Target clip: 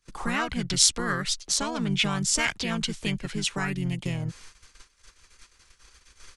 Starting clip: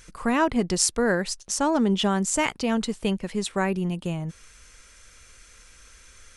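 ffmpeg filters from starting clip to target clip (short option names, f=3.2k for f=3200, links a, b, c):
-filter_complex "[0:a]agate=range=-31dB:threshold=-48dB:ratio=16:detection=peak,equalizer=f=4.1k:w=1.3:g=3,acrossover=split=170|1400[a][b][c];[b]acompressor=threshold=-35dB:ratio=8[d];[a][d][c]amix=inputs=3:normalize=0,asplit=2[e][f];[f]asetrate=33038,aresample=44100,atempo=1.33484,volume=-2dB[g];[e][g]amix=inputs=2:normalize=0"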